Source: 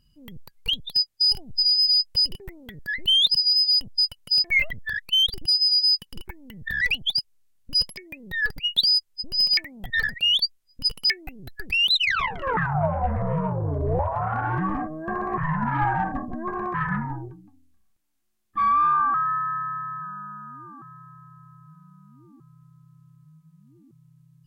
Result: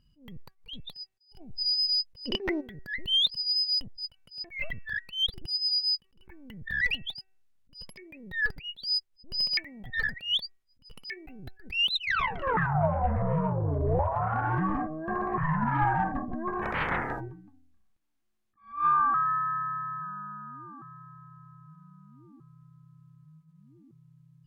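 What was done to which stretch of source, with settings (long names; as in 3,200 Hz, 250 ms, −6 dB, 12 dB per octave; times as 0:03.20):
0:02.26–0:02.61: gain on a spectral selection 210–6,200 Hz +19 dB
0:16.61–0:17.19: ceiling on every frequency bin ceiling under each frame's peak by 30 dB
whole clip: high-shelf EQ 5,400 Hz −11 dB; hum removal 381 Hz, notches 7; level that may rise only so fast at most 160 dB per second; level −2 dB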